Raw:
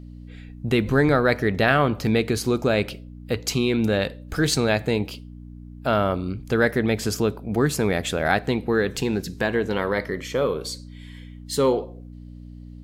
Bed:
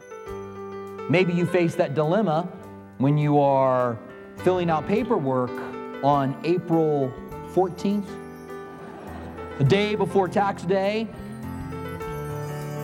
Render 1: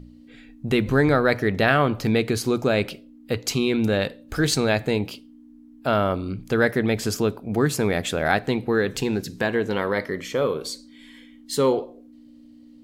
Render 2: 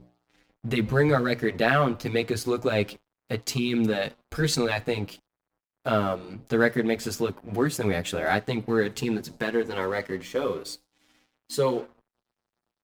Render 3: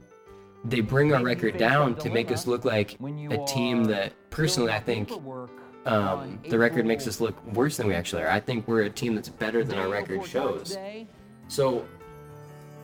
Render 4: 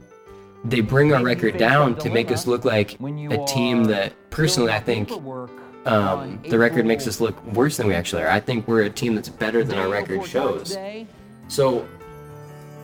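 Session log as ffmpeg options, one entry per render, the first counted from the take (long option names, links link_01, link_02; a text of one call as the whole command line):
ffmpeg -i in.wav -af "bandreject=frequency=60:width_type=h:width=4,bandreject=frequency=120:width_type=h:width=4,bandreject=frequency=180:width_type=h:width=4" out.wav
ffmpeg -i in.wav -filter_complex "[0:a]aeval=exprs='sgn(val(0))*max(abs(val(0))-0.0075,0)':channel_layout=same,asplit=2[link_01][link_02];[link_02]adelay=7.7,afreqshift=0.38[link_03];[link_01][link_03]amix=inputs=2:normalize=1" out.wav
ffmpeg -i in.wav -i bed.wav -filter_complex "[1:a]volume=-14dB[link_01];[0:a][link_01]amix=inputs=2:normalize=0" out.wav
ffmpeg -i in.wav -af "volume=5.5dB,alimiter=limit=-3dB:level=0:latency=1" out.wav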